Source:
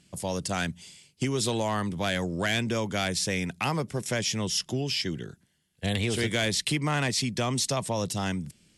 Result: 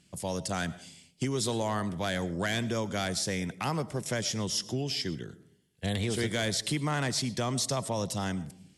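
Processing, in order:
dynamic equaliser 2,600 Hz, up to −7 dB, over −47 dBFS, Q 3.2
on a send: convolution reverb RT60 0.65 s, pre-delay 65 ms, DRR 17 dB
on the sum: level −2.5 dB

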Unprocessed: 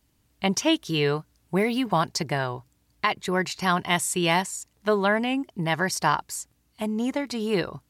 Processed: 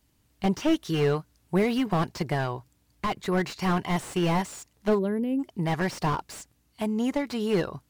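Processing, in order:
gain on a spectral selection 0:04.99–0:05.39, 590–10,000 Hz −20 dB
slew-rate limiting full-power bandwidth 62 Hz

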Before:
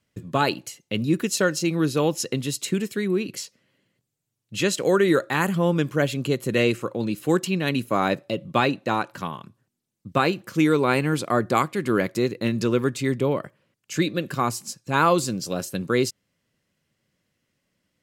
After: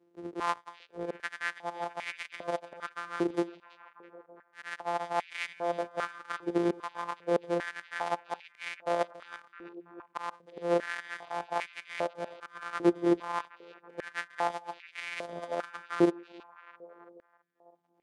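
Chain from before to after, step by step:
samples sorted by size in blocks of 256 samples
Butterworth low-pass 11,000 Hz 72 dB per octave
spectral tilt −3.5 dB per octave
harmonic and percussive parts rebalanced percussive −12 dB
reversed playback
downward compressor 20 to 1, threshold −22 dBFS, peak gain reduction 16 dB
reversed playback
volume swells 132 ms
reverb reduction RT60 2 s
shaped tremolo saw up 3.8 Hz, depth 40%
on a send: echo through a band-pass that steps 330 ms, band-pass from 3,200 Hz, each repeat −0.7 octaves, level −10.5 dB
on the sum: high-pass on a step sequencer 2.5 Hz 360–2,200 Hz
level +3 dB

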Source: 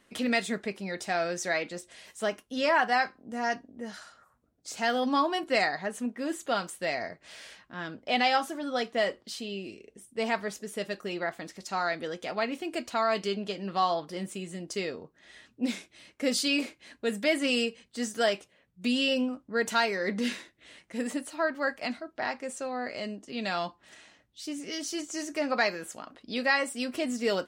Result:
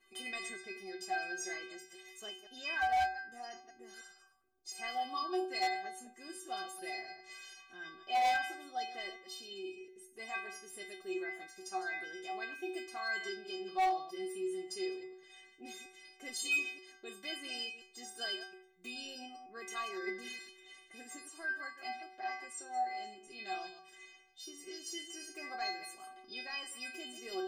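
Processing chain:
delay that plays each chunk backwards 103 ms, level −10.5 dB
in parallel at +0.5 dB: downward compressor, threshold −42 dBFS, peak gain reduction 20.5 dB
on the sum: stiff-string resonator 370 Hz, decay 0.59 s, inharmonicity 0.008
gain into a clipping stage and back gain 35 dB
hum removal 57.85 Hz, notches 3
level +8 dB

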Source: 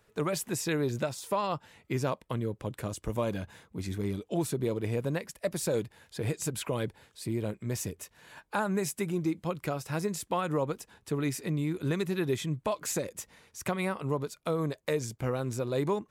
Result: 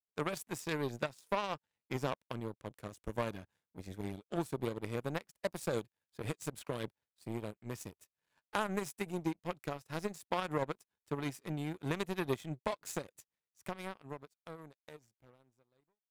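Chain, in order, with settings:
fade-out on the ending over 3.33 s
power curve on the samples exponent 2
level +1.5 dB

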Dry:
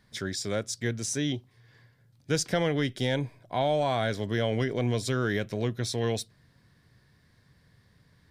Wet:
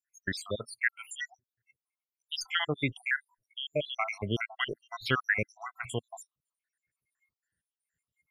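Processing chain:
time-frequency cells dropped at random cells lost 79%
noise reduction from a noise print of the clip's start 28 dB
flat-topped bell 1,900 Hz +10.5 dB

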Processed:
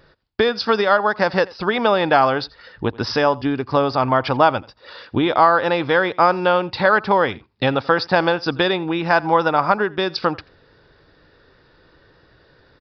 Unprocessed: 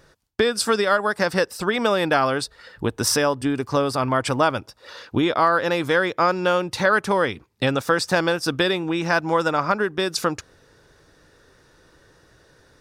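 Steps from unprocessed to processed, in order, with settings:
downsampling to 11,025 Hz
dynamic equaliser 820 Hz, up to +7 dB, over −36 dBFS, Q 2.2
single-tap delay 85 ms −23 dB
level +1.5 dB

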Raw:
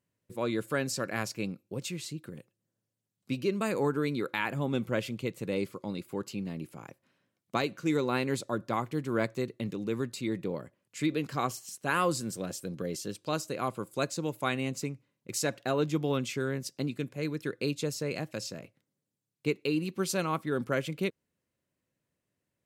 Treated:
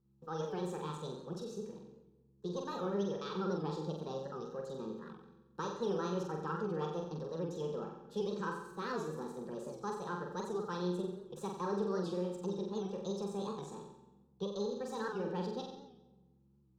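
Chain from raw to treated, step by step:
gain on one half-wave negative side −3 dB
dynamic equaliser 1,300 Hz, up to −7 dB, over −51 dBFS, Q 3.2
in parallel at −1 dB: brickwall limiter −26 dBFS, peak gain reduction 10.5 dB
on the sum: mains hum 50 Hz, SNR 31 dB
phaser with its sweep stopped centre 310 Hz, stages 8
notch comb filter 540 Hz
formants moved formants +2 semitones
high-frequency loss of the air 250 metres
flutter between parallel walls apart 10.4 metres, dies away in 0.89 s
convolution reverb RT60 1.4 s, pre-delay 152 ms, DRR 13.5 dB
wrong playback speed 33 rpm record played at 45 rpm
wow of a warped record 78 rpm, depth 100 cents
level −6.5 dB

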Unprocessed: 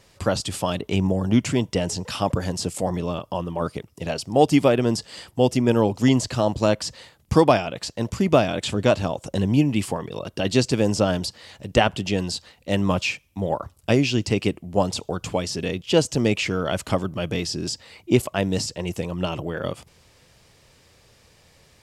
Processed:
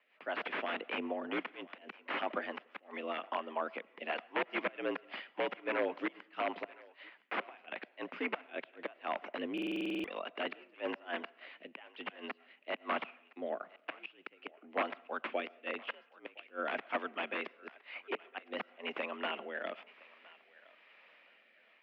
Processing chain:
first difference
automatic gain control gain up to 8 dB
gate with flip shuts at −14 dBFS, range −31 dB
harmonic generator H 3 −30 dB, 4 −32 dB, 8 −38 dB, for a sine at −9 dBFS
rotating-speaker cabinet horn 5 Hz, later 1 Hz, at 0:07.68
wrap-around overflow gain 28.5 dB
feedback echo with a high-pass in the loop 1,014 ms, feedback 30%, high-pass 650 Hz, level −20 dB
on a send at −23 dB: convolution reverb RT60 0.60 s, pre-delay 65 ms
on the sum: single-sideband voice off tune +63 Hz 150–2,500 Hz
buffer that repeats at 0:09.53, samples 2,048, times 10
level +7 dB

